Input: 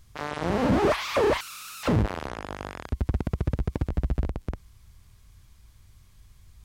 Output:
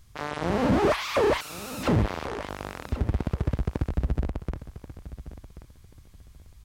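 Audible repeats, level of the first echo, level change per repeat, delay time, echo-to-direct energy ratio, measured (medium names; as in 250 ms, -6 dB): 2, -14.5 dB, -13.0 dB, 1084 ms, -14.5 dB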